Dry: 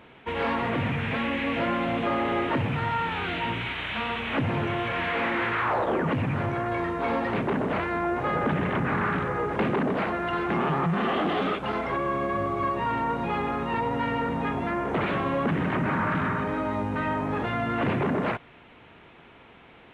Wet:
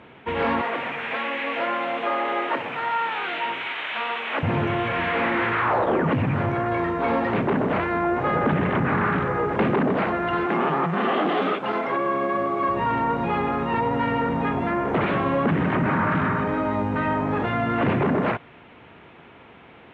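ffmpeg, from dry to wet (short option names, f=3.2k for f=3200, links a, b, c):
-filter_complex "[0:a]asettb=1/sr,asplit=3[a][b][c];[a]atrim=end=0.614[d];[b]atrim=start=0.61:end=4.43,asetpts=PTS-STARTPTS,afade=t=in:d=0.004:c=qsin,afade=t=out:st=3.816:d=0.004:c=qsin,highpass=510[e];[c]atrim=start=4.426[f];[d][e]acrossfade=d=0.004:c1=hsin:c2=qsin[g];[g][f]acrossfade=d=0.004:c1=qsin:c2=hsin,asettb=1/sr,asplit=3[h][i][j];[h]atrim=end=10.464[k];[i]atrim=start=10.46:end=12.69,asetpts=PTS-STARTPTS,afade=t=in:d=0.004:c=qsin,afade=t=out:st=2.226:d=0.004:c=qsin,highpass=220[l];[j]atrim=start=12.686[m];[k][l]acrossfade=d=0.004:c1=hsin:c2=qsin[n];[n][m]acrossfade=d=0.004:c1=qsin:c2=hsin,highpass=65,aemphasis=mode=reproduction:type=50fm,volume=4dB"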